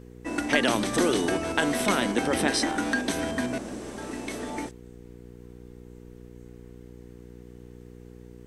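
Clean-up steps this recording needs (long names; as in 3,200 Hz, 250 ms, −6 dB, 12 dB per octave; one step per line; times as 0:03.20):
hum removal 60.5 Hz, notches 8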